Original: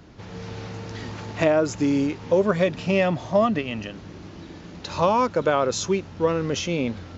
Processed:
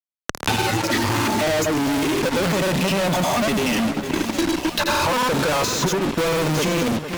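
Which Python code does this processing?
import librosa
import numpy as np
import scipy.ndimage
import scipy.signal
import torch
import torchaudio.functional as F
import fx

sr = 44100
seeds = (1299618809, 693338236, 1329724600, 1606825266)

p1 = fx.noise_reduce_blind(x, sr, reduce_db=22)
p2 = fx.over_compress(p1, sr, threshold_db=-31.0, ratio=-1.0)
p3 = p1 + (p2 * librosa.db_to_amplitude(-2.5))
p4 = fx.granulator(p3, sr, seeds[0], grain_ms=100.0, per_s=20.0, spray_ms=100.0, spread_st=0)
p5 = fx.fuzz(p4, sr, gain_db=47.0, gate_db=-41.0)
p6 = p5 + fx.echo_alternate(p5, sr, ms=452, hz=2300.0, feedback_pct=68, wet_db=-12, dry=0)
p7 = fx.band_squash(p6, sr, depth_pct=100)
y = p7 * librosa.db_to_amplitude(-6.5)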